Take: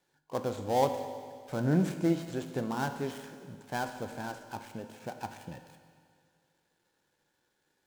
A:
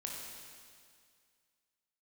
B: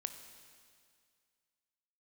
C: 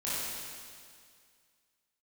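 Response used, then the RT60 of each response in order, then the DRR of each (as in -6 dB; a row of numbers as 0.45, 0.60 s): B; 2.1, 2.1, 2.1 s; -1.5, 8.0, -10.5 dB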